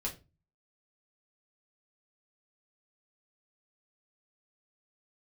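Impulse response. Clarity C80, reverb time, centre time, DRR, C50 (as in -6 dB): 19.5 dB, 0.30 s, 15 ms, -4.0 dB, 13.0 dB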